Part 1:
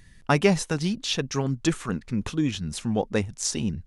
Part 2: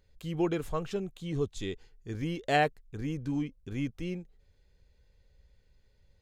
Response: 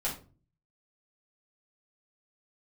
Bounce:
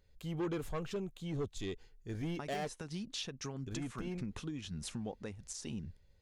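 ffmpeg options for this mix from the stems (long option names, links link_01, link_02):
-filter_complex "[0:a]acompressor=threshold=-30dB:ratio=6,adelay=2100,volume=-7.5dB[link_01];[1:a]asoftclip=type=tanh:threshold=-29dB,volume=-2.5dB,asplit=3[link_02][link_03][link_04];[link_02]atrim=end=2.74,asetpts=PTS-STARTPTS,afade=type=out:start_time=2.736:duration=0.004:curve=hsin[link_05];[link_03]atrim=start=2.74:end=3.63,asetpts=PTS-STARTPTS,volume=0[link_06];[link_04]atrim=start=3.63,asetpts=PTS-STARTPTS,afade=type=in:duration=0.004:curve=hsin[link_07];[link_05][link_06][link_07]concat=n=3:v=0:a=1[link_08];[link_01][link_08]amix=inputs=2:normalize=0,alimiter=level_in=6dB:limit=-24dB:level=0:latency=1:release=171,volume=-6dB"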